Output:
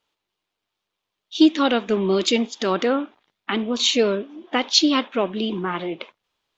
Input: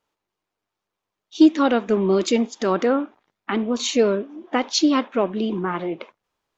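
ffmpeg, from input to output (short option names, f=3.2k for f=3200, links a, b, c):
-af "equalizer=f=3.4k:t=o:w=1.2:g=10,volume=-1.5dB"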